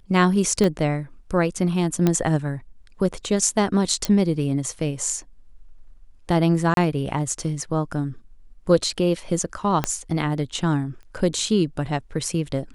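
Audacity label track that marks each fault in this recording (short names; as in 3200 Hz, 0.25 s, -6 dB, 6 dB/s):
0.640000	0.640000	pop -10 dBFS
2.070000	2.070000	pop -7 dBFS
4.050000	4.050000	pop -8 dBFS
6.740000	6.770000	gap 32 ms
9.840000	9.840000	pop -7 dBFS
11.030000	11.030000	pop -34 dBFS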